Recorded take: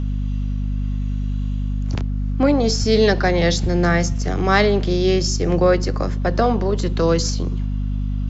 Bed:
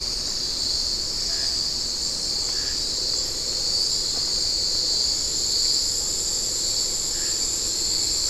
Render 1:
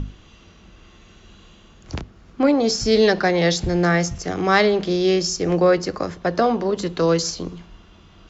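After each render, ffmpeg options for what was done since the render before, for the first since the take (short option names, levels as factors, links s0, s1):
-af "bandreject=f=50:t=h:w=6,bandreject=f=100:t=h:w=6,bandreject=f=150:t=h:w=6,bandreject=f=200:t=h:w=6,bandreject=f=250:t=h:w=6"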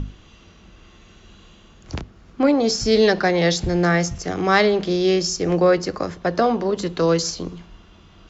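-af anull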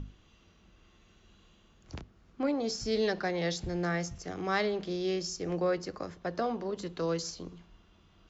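-af "volume=0.211"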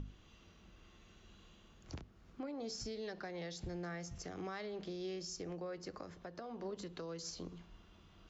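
-af "acompressor=threshold=0.0126:ratio=10,alimiter=level_in=3.35:limit=0.0631:level=0:latency=1:release=317,volume=0.299"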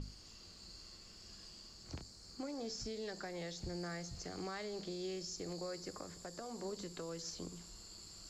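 -filter_complex "[1:a]volume=0.0266[s0];[0:a][s0]amix=inputs=2:normalize=0"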